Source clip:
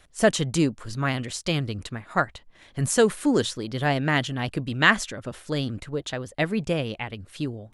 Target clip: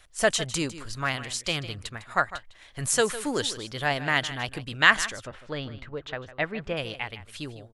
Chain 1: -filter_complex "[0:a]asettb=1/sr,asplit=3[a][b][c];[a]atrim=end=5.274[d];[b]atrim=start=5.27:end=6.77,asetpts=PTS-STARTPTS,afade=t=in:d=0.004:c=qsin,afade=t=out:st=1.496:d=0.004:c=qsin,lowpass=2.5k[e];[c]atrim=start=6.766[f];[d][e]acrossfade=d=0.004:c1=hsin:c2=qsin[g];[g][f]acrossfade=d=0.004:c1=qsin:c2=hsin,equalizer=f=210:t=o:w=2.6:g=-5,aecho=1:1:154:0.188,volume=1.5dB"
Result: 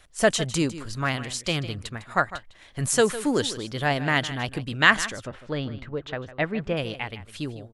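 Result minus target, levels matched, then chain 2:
250 Hz band +5.0 dB
-filter_complex "[0:a]asettb=1/sr,asplit=3[a][b][c];[a]atrim=end=5.274[d];[b]atrim=start=5.27:end=6.77,asetpts=PTS-STARTPTS,afade=t=in:d=0.004:c=qsin,afade=t=out:st=1.496:d=0.004:c=qsin,lowpass=2.5k[e];[c]atrim=start=6.766[f];[d][e]acrossfade=d=0.004:c1=hsin:c2=qsin[g];[g][f]acrossfade=d=0.004:c1=qsin:c2=hsin,equalizer=f=210:t=o:w=2.6:g=-12,aecho=1:1:154:0.188,volume=1.5dB"

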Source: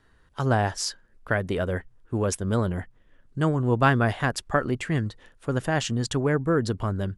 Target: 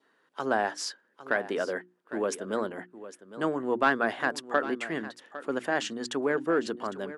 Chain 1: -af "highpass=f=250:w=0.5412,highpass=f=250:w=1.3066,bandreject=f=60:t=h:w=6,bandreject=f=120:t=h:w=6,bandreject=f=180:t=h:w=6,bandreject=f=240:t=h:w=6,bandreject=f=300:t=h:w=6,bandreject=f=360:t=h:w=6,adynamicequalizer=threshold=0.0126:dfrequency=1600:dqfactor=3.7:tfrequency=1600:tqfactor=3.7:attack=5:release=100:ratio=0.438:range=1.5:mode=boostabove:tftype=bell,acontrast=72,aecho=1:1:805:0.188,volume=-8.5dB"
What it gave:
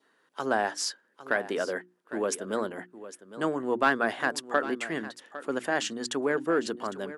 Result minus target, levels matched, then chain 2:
8000 Hz band +4.0 dB
-af "highpass=f=250:w=0.5412,highpass=f=250:w=1.3066,highshelf=f=6.1k:g=-8,bandreject=f=60:t=h:w=6,bandreject=f=120:t=h:w=6,bandreject=f=180:t=h:w=6,bandreject=f=240:t=h:w=6,bandreject=f=300:t=h:w=6,bandreject=f=360:t=h:w=6,adynamicequalizer=threshold=0.0126:dfrequency=1600:dqfactor=3.7:tfrequency=1600:tqfactor=3.7:attack=5:release=100:ratio=0.438:range=1.5:mode=boostabove:tftype=bell,acontrast=72,aecho=1:1:805:0.188,volume=-8.5dB"

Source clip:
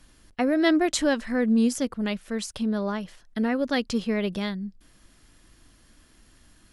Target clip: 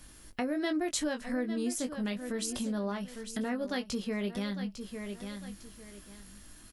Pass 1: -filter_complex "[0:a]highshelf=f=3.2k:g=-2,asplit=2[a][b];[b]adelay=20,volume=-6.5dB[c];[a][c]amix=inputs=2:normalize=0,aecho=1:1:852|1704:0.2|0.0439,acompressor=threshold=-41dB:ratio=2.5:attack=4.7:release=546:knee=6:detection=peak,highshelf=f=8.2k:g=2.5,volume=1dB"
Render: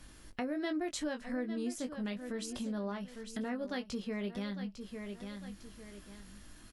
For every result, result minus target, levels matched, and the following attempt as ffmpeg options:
8000 Hz band -4.5 dB; compressor: peak gain reduction +4 dB
-filter_complex "[0:a]highshelf=f=3.2k:g=-2,asplit=2[a][b];[b]adelay=20,volume=-6.5dB[c];[a][c]amix=inputs=2:normalize=0,aecho=1:1:852|1704:0.2|0.0439,acompressor=threshold=-41dB:ratio=2.5:attack=4.7:release=546:knee=6:detection=peak,highshelf=f=8.2k:g=13.5,volume=1dB"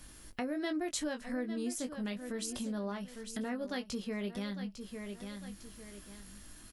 compressor: peak gain reduction +4 dB
-filter_complex "[0:a]highshelf=f=3.2k:g=-2,asplit=2[a][b];[b]adelay=20,volume=-6.5dB[c];[a][c]amix=inputs=2:normalize=0,aecho=1:1:852|1704:0.2|0.0439,acompressor=threshold=-34.5dB:ratio=2.5:attack=4.7:release=546:knee=6:detection=peak,highshelf=f=8.2k:g=13.5,volume=1dB"

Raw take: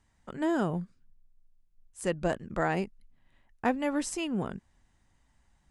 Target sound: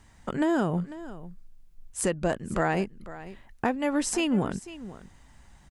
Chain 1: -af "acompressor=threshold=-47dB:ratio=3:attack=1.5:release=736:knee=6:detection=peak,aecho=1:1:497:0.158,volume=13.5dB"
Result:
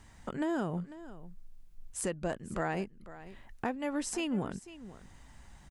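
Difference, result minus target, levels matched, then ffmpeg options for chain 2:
compressor: peak gain reduction +7.5 dB
-af "acompressor=threshold=-35.5dB:ratio=3:attack=1.5:release=736:knee=6:detection=peak,aecho=1:1:497:0.158,volume=13.5dB"

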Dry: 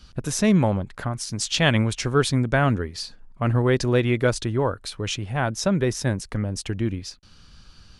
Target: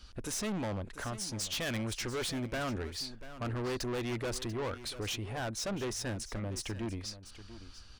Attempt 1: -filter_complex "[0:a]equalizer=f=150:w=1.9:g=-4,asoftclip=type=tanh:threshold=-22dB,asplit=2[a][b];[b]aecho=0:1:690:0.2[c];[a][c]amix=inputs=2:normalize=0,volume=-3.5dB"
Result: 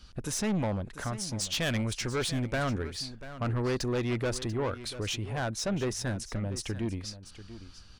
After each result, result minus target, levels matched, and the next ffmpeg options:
soft clip: distortion -4 dB; 125 Hz band +2.0 dB
-filter_complex "[0:a]equalizer=f=150:w=1.9:g=-4,asoftclip=type=tanh:threshold=-29dB,asplit=2[a][b];[b]aecho=0:1:690:0.2[c];[a][c]amix=inputs=2:normalize=0,volume=-3.5dB"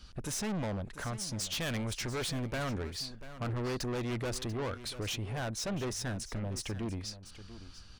125 Hz band +2.0 dB
-filter_complex "[0:a]equalizer=f=150:w=1.9:g=-13,asoftclip=type=tanh:threshold=-29dB,asplit=2[a][b];[b]aecho=0:1:690:0.2[c];[a][c]amix=inputs=2:normalize=0,volume=-3.5dB"

